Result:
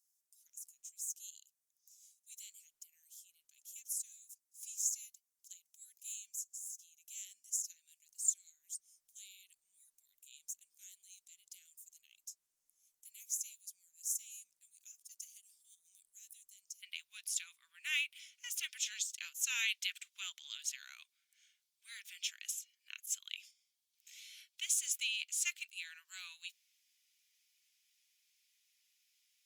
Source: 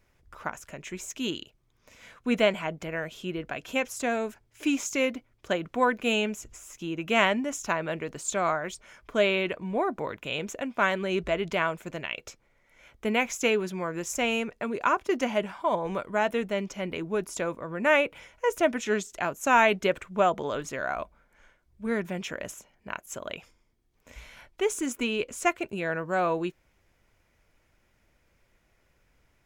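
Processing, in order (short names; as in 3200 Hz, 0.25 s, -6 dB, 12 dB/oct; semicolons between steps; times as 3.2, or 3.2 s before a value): inverse Chebyshev high-pass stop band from 1200 Hz, stop band 80 dB, from 16.82 s stop band from 540 Hz; gain +3 dB; Opus 48 kbps 48000 Hz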